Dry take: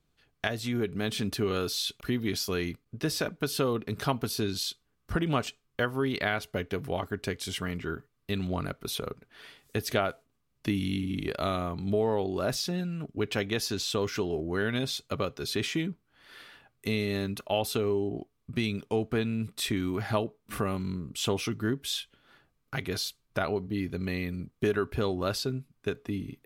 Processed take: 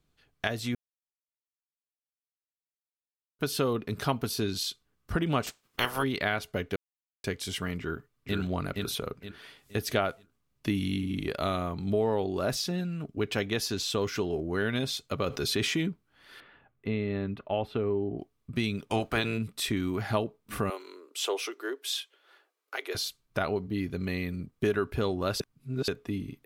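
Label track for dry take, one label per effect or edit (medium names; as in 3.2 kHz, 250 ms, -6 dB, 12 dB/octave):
0.750000	3.390000	mute
5.460000	6.020000	spectral peaks clipped ceiling under each frame's peak by 27 dB
6.760000	7.240000	mute
7.790000	8.370000	echo throw 470 ms, feedback 35%, level -2.5 dB
15.260000	15.890000	level flattener amount 50%
16.400000	18.190000	distance through air 480 m
18.890000	19.370000	spectral peaks clipped ceiling under each frame's peak by 17 dB
20.700000	22.950000	steep high-pass 350 Hz 48 dB/octave
25.400000	25.880000	reverse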